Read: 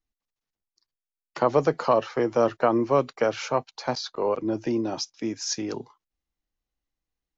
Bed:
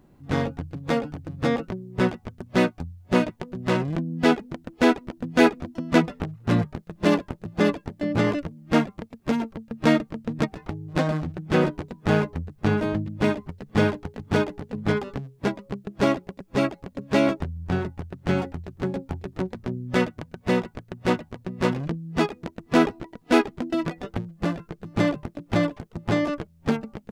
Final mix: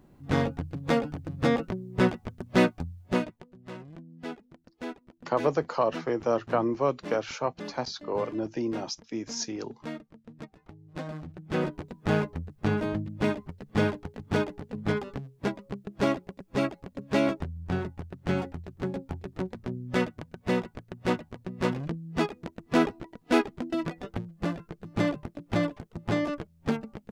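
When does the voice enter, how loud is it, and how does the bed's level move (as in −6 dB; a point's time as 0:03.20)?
3.90 s, −4.5 dB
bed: 0:03.00 −1 dB
0:03.56 −19 dB
0:10.53 −19 dB
0:11.91 −4.5 dB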